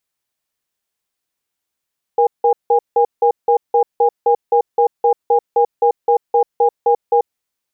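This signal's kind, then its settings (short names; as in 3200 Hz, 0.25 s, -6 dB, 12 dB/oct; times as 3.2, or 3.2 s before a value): cadence 474 Hz, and 814 Hz, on 0.09 s, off 0.17 s, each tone -12 dBFS 5.07 s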